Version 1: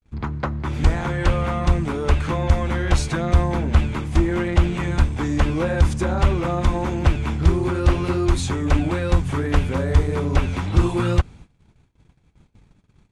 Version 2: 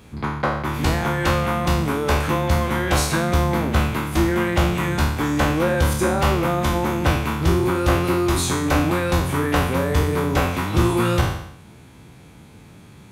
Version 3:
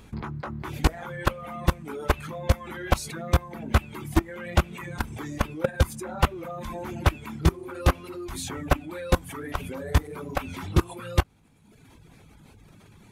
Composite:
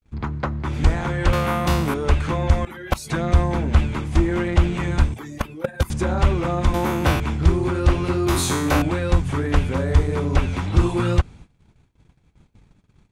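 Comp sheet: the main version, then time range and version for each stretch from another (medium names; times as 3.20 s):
1
1.33–1.94 s: from 2
2.65–3.10 s: from 3
5.14–5.90 s: from 3
6.74–7.20 s: from 2
8.27–8.82 s: from 2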